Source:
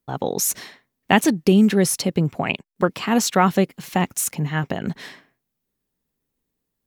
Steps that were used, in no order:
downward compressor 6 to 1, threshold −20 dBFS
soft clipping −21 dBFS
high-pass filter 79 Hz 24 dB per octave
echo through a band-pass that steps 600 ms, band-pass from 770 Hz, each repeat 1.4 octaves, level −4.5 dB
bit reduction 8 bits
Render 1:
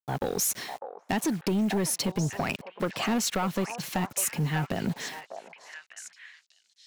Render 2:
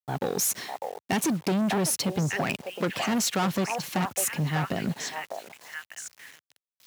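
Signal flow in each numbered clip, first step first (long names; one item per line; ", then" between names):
high-pass filter, then downward compressor, then bit reduction, then soft clipping, then echo through a band-pass that steps
echo through a band-pass that steps, then soft clipping, then bit reduction, then high-pass filter, then downward compressor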